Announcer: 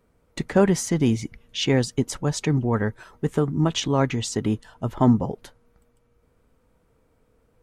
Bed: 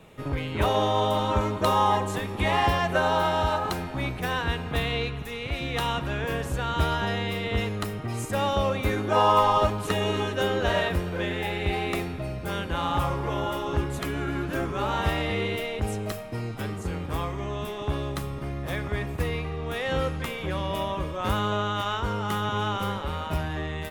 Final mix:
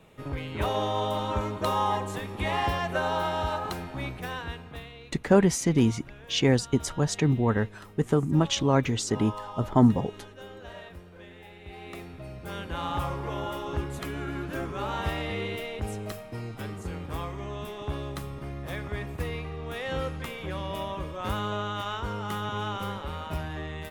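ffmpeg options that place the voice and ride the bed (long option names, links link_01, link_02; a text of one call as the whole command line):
ffmpeg -i stem1.wav -i stem2.wav -filter_complex "[0:a]adelay=4750,volume=-1.5dB[link_01];[1:a]volume=10dB,afade=type=out:start_time=4.02:duration=0.92:silence=0.188365,afade=type=in:start_time=11.64:duration=1.2:silence=0.188365[link_02];[link_01][link_02]amix=inputs=2:normalize=0" out.wav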